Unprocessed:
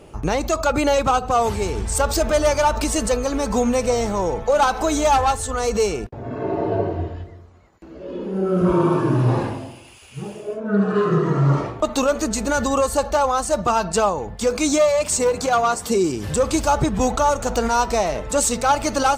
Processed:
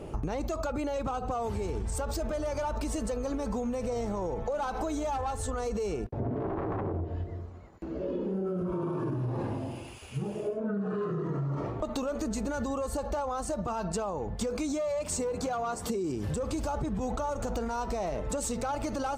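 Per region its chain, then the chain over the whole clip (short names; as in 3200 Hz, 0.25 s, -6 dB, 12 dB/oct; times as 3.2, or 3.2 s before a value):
6.2–7.05 self-modulated delay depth 0.94 ms + tilt shelf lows +8 dB, about 1400 Hz
whole clip: tilt shelf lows +4.5 dB, about 1100 Hz; limiter -14 dBFS; compressor 6:1, threshold -30 dBFS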